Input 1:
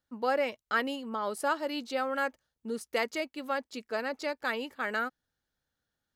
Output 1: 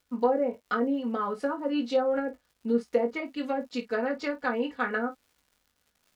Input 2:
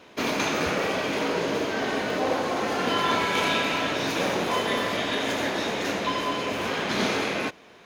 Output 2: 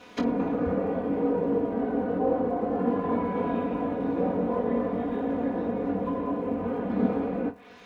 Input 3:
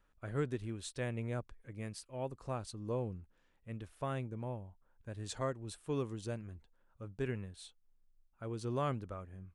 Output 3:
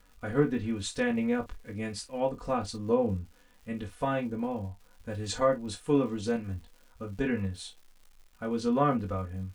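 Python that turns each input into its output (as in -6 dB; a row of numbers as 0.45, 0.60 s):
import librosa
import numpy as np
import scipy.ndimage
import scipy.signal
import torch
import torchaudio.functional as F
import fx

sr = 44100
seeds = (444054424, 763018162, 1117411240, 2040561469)

p1 = fx.env_lowpass_down(x, sr, base_hz=600.0, full_db=-26.0)
p2 = fx.peak_eq(p1, sr, hz=90.0, db=6.0, octaves=1.3)
p3 = p2 + 0.98 * np.pad(p2, (int(4.1 * sr / 1000.0), 0))[:len(p2)]
p4 = fx.dmg_crackle(p3, sr, seeds[0], per_s=200.0, level_db=-55.0)
p5 = p4 + fx.room_early_taps(p4, sr, ms=(21, 51), db=(-6.0, -14.5), dry=0)
y = p5 * 10.0 ** (-12 / 20.0) / np.max(np.abs(p5))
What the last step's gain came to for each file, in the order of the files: +1.5, -2.5, +6.5 dB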